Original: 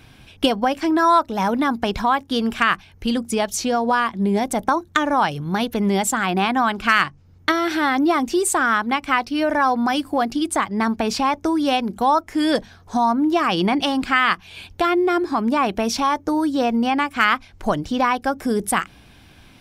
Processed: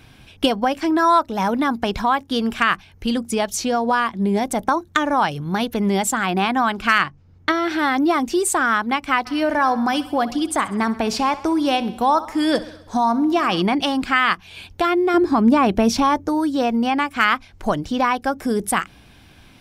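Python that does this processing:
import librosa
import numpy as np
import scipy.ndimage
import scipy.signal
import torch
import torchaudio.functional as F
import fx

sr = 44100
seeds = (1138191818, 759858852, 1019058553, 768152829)

y = fx.high_shelf(x, sr, hz=6700.0, db=-10.5, at=(6.98, 7.79))
y = fx.echo_feedback(y, sr, ms=65, feedback_pct=59, wet_db=-16.5, at=(9.25, 13.61), fade=0.02)
y = fx.low_shelf(y, sr, hz=470.0, db=8.5, at=(15.14, 16.27))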